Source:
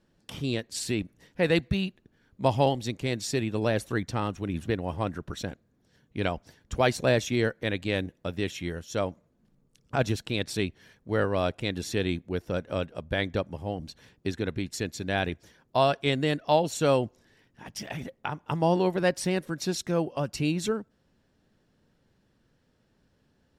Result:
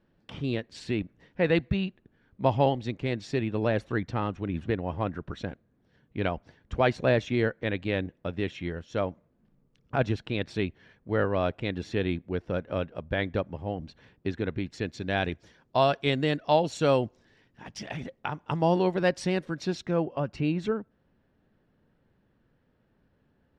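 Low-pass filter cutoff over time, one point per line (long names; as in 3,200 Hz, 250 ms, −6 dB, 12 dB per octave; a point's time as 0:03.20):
0:14.72 2,900 Hz
0:15.21 5,200 Hz
0:19.33 5,200 Hz
0:20.10 2,400 Hz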